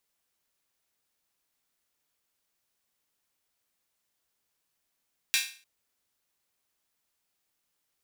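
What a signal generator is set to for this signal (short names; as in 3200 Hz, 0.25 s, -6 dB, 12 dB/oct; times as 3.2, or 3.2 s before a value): open hi-hat length 0.30 s, high-pass 2300 Hz, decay 0.40 s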